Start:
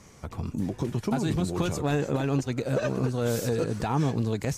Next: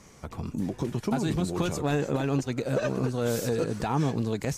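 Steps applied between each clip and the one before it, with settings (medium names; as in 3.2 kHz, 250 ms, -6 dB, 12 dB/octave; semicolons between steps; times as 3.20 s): peaking EQ 97 Hz -4.5 dB 0.71 oct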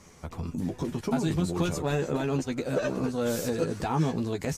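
doubling 12 ms -5.5 dB; trim -1.5 dB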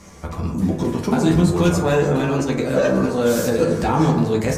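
reverberation RT60 1.2 s, pre-delay 7 ms, DRR 0.5 dB; trim +7.5 dB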